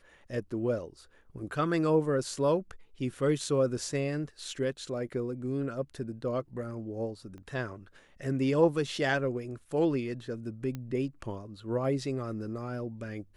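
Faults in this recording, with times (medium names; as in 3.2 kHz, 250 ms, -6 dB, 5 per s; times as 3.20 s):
7.38 s: pop -36 dBFS
10.75 s: pop -24 dBFS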